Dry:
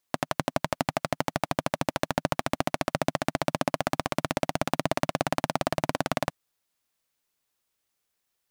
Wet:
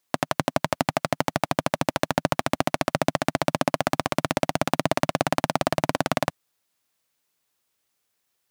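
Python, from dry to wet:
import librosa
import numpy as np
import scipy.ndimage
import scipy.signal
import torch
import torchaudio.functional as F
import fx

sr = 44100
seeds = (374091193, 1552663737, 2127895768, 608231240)

y = scipy.signal.sosfilt(scipy.signal.butter(2, 72.0, 'highpass', fs=sr, output='sos'), x)
y = F.gain(torch.from_numpy(y), 4.0).numpy()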